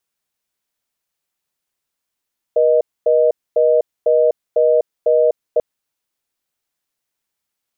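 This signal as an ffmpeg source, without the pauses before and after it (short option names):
-f lavfi -i "aevalsrc='0.224*(sin(2*PI*480*t)+sin(2*PI*620*t))*clip(min(mod(t,0.5),0.25-mod(t,0.5))/0.005,0,1)':d=3.04:s=44100"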